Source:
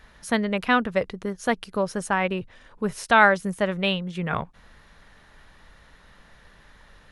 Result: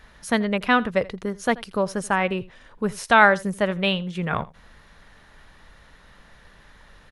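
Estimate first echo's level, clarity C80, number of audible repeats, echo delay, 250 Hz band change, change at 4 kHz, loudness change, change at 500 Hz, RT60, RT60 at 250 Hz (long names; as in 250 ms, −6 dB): −21.0 dB, no reverb audible, 1, 83 ms, +1.5 dB, +1.5 dB, +1.5 dB, +1.5 dB, no reverb audible, no reverb audible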